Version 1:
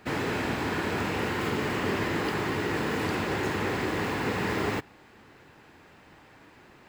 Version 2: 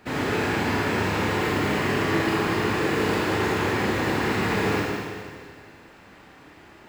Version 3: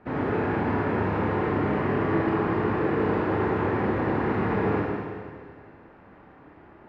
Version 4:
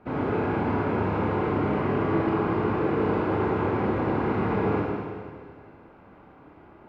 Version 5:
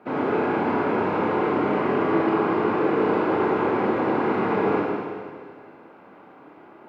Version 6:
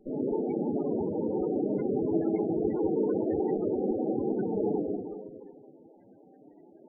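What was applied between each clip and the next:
Schroeder reverb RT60 2 s, combs from 27 ms, DRR -3.5 dB
low-pass 1.3 kHz 12 dB/octave
band-stop 1.8 kHz, Q 5.9
high-pass 240 Hz 12 dB/octave; trim +4.5 dB
comb filter that takes the minimum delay 0.4 ms; loudest bins only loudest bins 16; trim -4 dB

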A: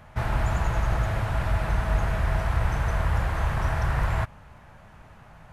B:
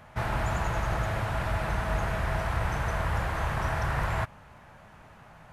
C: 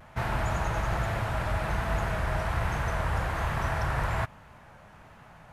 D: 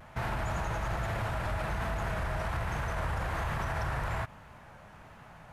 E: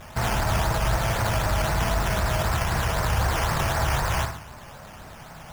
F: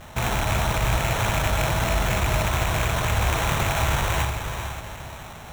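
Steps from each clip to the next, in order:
bass shelf 96 Hz -9 dB
vibrato 1.2 Hz 55 cents
peak limiter -24.5 dBFS, peak gain reduction 8.5 dB
on a send: flutter echo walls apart 10.1 m, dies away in 0.56 s; on the sum: decimation with a swept rate 9×, swing 60% 3.9 Hz; trim +8 dB
rattle on loud lows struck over -26 dBFS, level -18 dBFS; echo that smears into a reverb 456 ms, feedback 43%, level -7.5 dB; sample-rate reducer 4.8 kHz, jitter 0%

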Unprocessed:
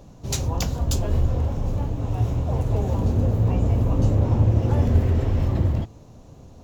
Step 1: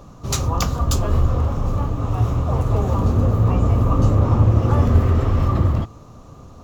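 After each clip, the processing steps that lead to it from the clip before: small resonant body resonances 1.2 kHz, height 17 dB, ringing for 25 ms; trim +3.5 dB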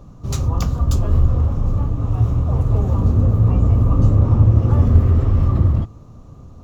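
bass shelf 340 Hz +11 dB; trim -7.5 dB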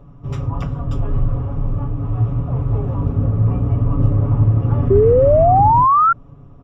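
Savitzky-Golay filter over 25 samples; comb 7.1 ms, depth 74%; painted sound rise, 4.90–6.13 s, 380–1400 Hz -9 dBFS; trim -3 dB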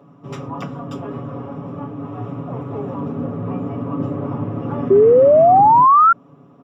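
high-pass 180 Hz 24 dB/octave; trim +2 dB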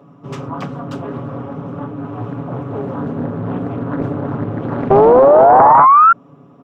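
loudspeaker Doppler distortion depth 0.86 ms; trim +3 dB

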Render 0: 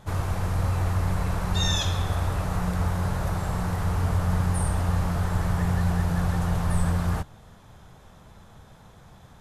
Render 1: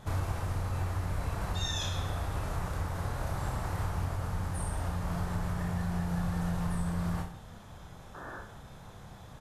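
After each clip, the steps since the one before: compression 6:1, threshold -30 dBFS, peak gain reduction 12 dB; painted sound noise, 8.14–8.41 s, 220–1800 Hz -45 dBFS; reverse bouncing-ball echo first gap 30 ms, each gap 1.15×, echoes 5; trim -1 dB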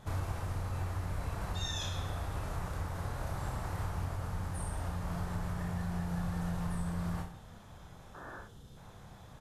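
time-frequency box 8.48–8.77 s, 520–2700 Hz -9 dB; trim -3.5 dB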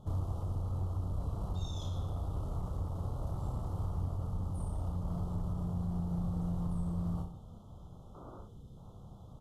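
elliptic band-stop 1.3–3 kHz, stop band 40 dB; tilt shelf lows +6.5 dB, about 880 Hz; in parallel at -4.5 dB: one-sided clip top -34.5 dBFS; on the sum: trim -8 dB

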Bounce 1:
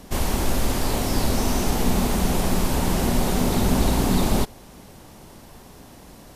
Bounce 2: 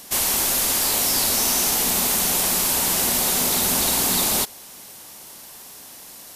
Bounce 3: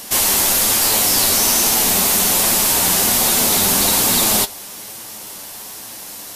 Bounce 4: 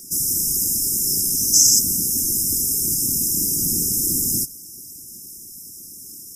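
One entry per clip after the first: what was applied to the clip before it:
tilt EQ +4 dB/octave
in parallel at 0 dB: peak limiter -19 dBFS, peak gain reduction 10.5 dB; on the sum: flange 1.2 Hz, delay 8.7 ms, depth 1.7 ms, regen +44%; trim +6.5 dB
brick-wall FIR band-stop 330–5000 Hz; whisper effect; time-frequency box 1.54–1.79 s, 580–8200 Hz +12 dB; trim -4.5 dB

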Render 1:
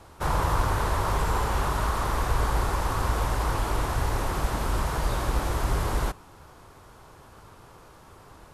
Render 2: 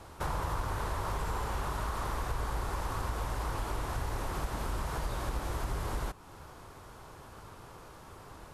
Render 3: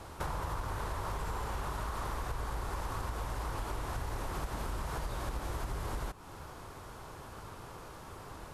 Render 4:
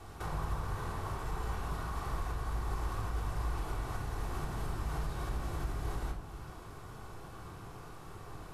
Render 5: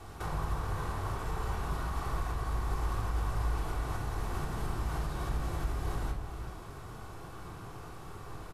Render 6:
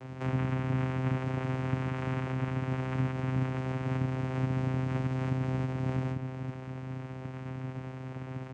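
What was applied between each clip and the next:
compression 2.5:1, threshold -35 dBFS, peak gain reduction 11.5 dB
compression 2.5:1, threshold -38 dBFS, peak gain reduction 7 dB; trim +2.5 dB
simulated room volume 1900 m³, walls furnished, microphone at 3.5 m; trim -6 dB
echo from a far wall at 62 m, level -9 dB; trim +2 dB
vocoder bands 4, saw 130 Hz; trim +8.5 dB

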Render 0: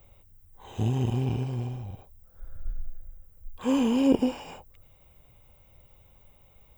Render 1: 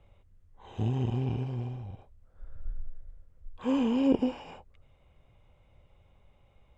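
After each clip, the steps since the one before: Bessel low-pass 3.6 kHz, order 2; trim -3 dB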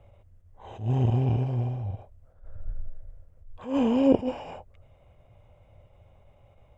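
fifteen-band graphic EQ 100 Hz +8 dB, 630 Hz +9 dB, 4 kHz -4 dB; attacks held to a fixed rise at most 150 dB/s; trim +2.5 dB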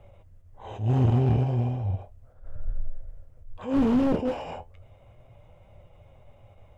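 flange 0.35 Hz, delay 4.8 ms, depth 9.2 ms, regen +63%; slew-rate limiter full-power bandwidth 13 Hz; trim +8 dB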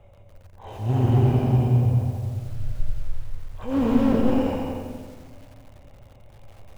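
reverberation RT60 1.5 s, pre-delay 124 ms, DRR 2 dB; bit-crushed delay 89 ms, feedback 55%, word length 8-bit, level -5.5 dB

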